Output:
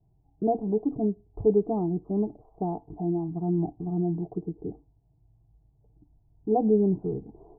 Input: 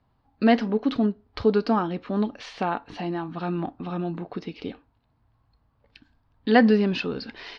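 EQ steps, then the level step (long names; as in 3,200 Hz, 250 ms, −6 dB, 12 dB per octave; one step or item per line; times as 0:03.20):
Butterworth low-pass 690 Hz 36 dB per octave
parametric band 61 Hz +14 dB 1.5 octaves
phaser with its sweep stopped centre 360 Hz, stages 8
+1.5 dB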